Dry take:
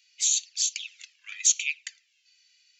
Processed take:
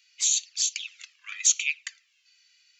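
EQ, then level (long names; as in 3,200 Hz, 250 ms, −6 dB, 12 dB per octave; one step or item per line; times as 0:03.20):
high-pass with resonance 1,100 Hz, resonance Q 4.4
0.0 dB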